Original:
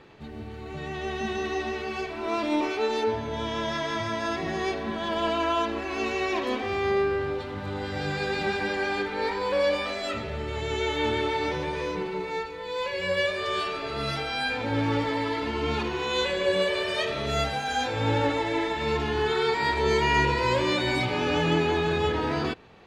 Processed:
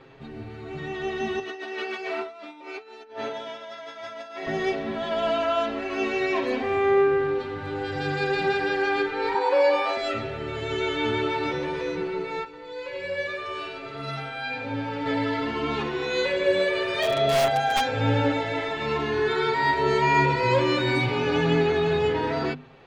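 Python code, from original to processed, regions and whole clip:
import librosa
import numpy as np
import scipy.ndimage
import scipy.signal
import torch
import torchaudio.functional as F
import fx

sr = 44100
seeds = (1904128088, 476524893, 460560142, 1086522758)

y = fx.chain(x, sr, fx.highpass(hz=420.0, slope=12),
    fx.over_compress(threshold_db=-36.0, ratio=-0.5),
    fx.notch(hz=1100.0, q=24.0), at=(1.39, 4.47))
y = fx.chain(y, sr, fx.highpass(hz=280.0, slope=12),
    fx.peak_eq(hz=880.0, db=13.0, octaves=0.52), at=(9.34, 9.97))
y = fx.chain(y, sr, fx.comb_fb(f0_hz=300.0, decay_s=0.21, harmonics='all', damping=0.0, mix_pct=60),
    fx.echo_single(ms=94, db=-6.5), at=(12.44, 15.06))
y = fx.chain(y, sr, fx.overflow_wrap(gain_db=20.0),
    fx.small_body(hz=(650.0, 3300.0), ring_ms=35, db=12), at=(17.02, 17.81))
y = fx.lowpass(y, sr, hz=3500.0, slope=6)
y = fx.hum_notches(y, sr, base_hz=50, count=5)
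y = y + 0.84 * np.pad(y, (int(7.5 * sr / 1000.0), 0))[:len(y)]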